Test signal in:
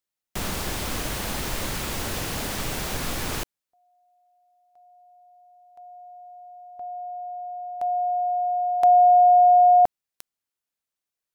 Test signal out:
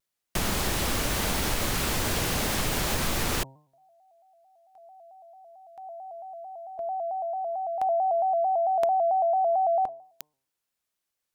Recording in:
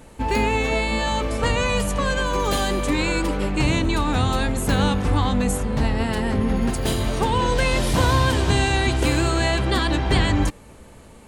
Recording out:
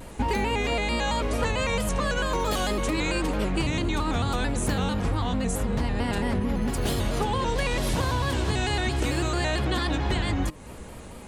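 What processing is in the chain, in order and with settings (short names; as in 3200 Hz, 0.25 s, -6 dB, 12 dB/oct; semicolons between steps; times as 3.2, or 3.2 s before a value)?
compressor 10:1, threshold -26 dBFS; de-hum 142.2 Hz, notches 7; shaped vibrato square 4.5 Hz, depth 100 cents; gain +4 dB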